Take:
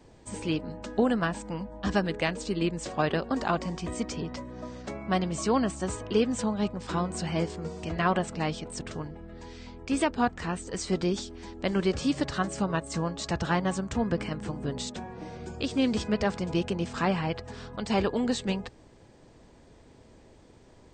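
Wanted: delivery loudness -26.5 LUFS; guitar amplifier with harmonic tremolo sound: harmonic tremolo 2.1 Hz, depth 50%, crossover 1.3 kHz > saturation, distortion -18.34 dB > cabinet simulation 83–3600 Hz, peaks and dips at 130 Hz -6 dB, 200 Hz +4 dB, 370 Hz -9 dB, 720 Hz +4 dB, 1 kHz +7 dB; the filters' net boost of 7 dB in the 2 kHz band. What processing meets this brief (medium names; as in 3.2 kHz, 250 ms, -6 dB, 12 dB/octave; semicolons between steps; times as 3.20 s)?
peaking EQ 2 kHz +8.5 dB; harmonic tremolo 2.1 Hz, depth 50%, crossover 1.3 kHz; saturation -17 dBFS; cabinet simulation 83–3600 Hz, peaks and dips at 130 Hz -6 dB, 200 Hz +4 dB, 370 Hz -9 dB, 720 Hz +4 dB, 1 kHz +7 dB; trim +5 dB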